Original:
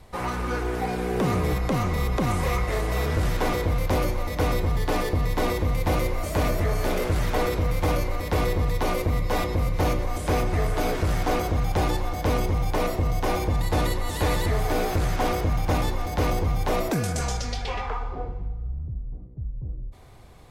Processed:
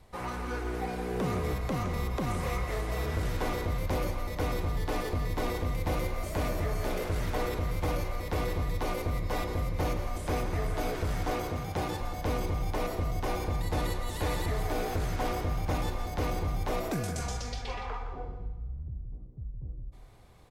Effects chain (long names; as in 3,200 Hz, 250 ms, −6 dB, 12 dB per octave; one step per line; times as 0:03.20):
0:11.33–0:12.01: high-pass filter 85 Hz
single-tap delay 167 ms −9.5 dB
level −7.5 dB